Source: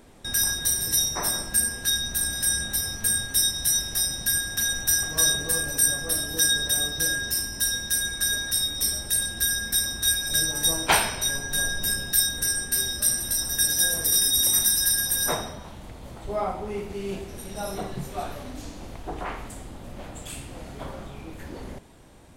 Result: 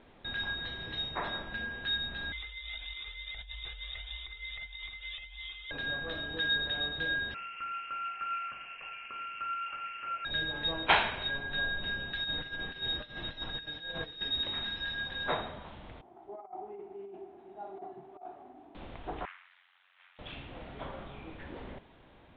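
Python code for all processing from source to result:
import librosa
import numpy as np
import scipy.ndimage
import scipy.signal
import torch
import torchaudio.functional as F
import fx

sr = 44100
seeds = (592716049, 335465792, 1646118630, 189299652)

y = fx.chain(x, sr, fx.freq_invert(carrier_hz=3700),
    fx.over_compress(threshold_db=-35.0, ratio=-1.0),
    fx.comb_cascade(direction='rising', hz=1.6), at=(2.32, 5.71))
y = fx.chain(y, sr, fx.highpass(hz=160.0, slope=24),
    fx.freq_invert(carrier_hz=3000), at=(7.34, 10.25))
y = fx.chain(y, sr, fx.over_compress(threshold_db=-29.0, ratio=-1.0),
    fx.comb(ms=6.4, depth=0.33), at=(12.24, 14.21))
y = fx.chain(y, sr, fx.cvsd(bps=64000),
    fx.double_bandpass(hz=520.0, octaves=0.98),
    fx.over_compress(threshold_db=-38.0, ratio=-0.5), at=(16.01, 18.75))
y = fx.chain(y, sr, fx.highpass(hz=1500.0, slope=24),
    fx.high_shelf(hz=3100.0, db=-11.5),
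    fx.ring_mod(carrier_hz=45.0), at=(19.25, 20.19))
y = scipy.signal.sosfilt(scipy.signal.butter(12, 3700.0, 'lowpass', fs=sr, output='sos'), y)
y = fx.low_shelf(y, sr, hz=450.0, db=-6.0)
y = F.gain(torch.from_numpy(y), -2.5).numpy()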